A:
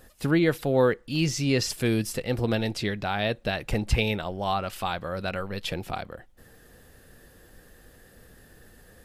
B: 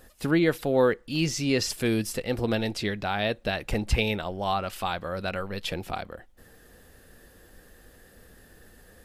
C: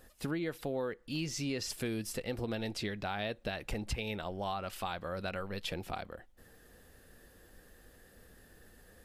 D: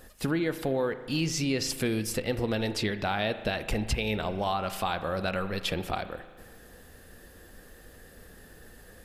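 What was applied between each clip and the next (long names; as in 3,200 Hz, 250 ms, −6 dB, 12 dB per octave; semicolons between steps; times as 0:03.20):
parametric band 130 Hz −5.5 dB 0.48 octaves
downward compressor 6 to 1, threshold −27 dBFS, peak gain reduction 10 dB; level −5.5 dB
spring reverb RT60 1.6 s, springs 37 ms, chirp 45 ms, DRR 11 dB; level +7.5 dB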